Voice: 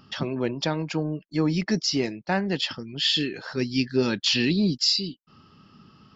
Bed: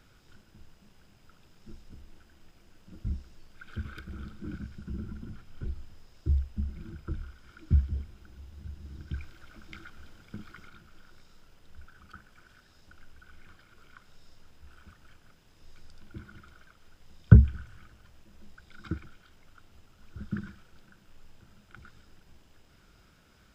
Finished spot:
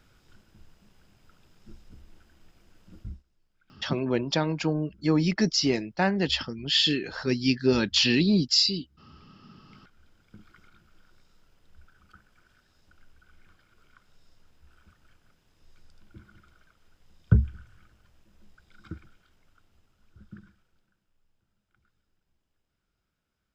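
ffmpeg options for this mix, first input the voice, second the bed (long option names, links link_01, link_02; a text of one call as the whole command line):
ffmpeg -i stem1.wav -i stem2.wav -filter_complex "[0:a]adelay=3700,volume=0.5dB[link_01];[1:a]volume=14dB,afade=type=out:start_time=2.96:duration=0.27:silence=0.105925,afade=type=in:start_time=9.41:duration=1.44:silence=0.177828,afade=type=out:start_time=18.97:duration=2.13:silence=0.177828[link_02];[link_01][link_02]amix=inputs=2:normalize=0" out.wav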